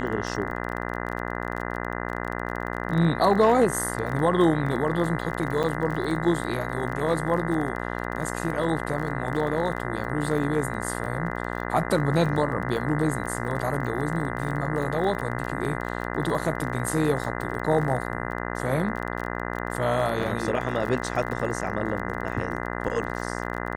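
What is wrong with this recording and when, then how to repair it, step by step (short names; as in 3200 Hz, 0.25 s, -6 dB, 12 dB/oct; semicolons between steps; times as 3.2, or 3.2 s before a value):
buzz 60 Hz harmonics 34 -31 dBFS
crackle 30/s -31 dBFS
5.63–5.64 gap 6.7 ms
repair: de-click; de-hum 60 Hz, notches 34; interpolate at 5.63, 6.7 ms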